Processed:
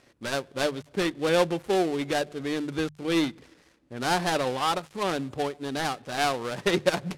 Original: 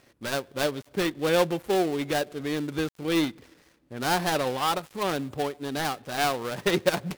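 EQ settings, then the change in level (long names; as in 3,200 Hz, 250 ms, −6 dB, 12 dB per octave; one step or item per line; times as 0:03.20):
low-pass filter 10,000 Hz 12 dB per octave
mains-hum notches 50/100/150 Hz
0.0 dB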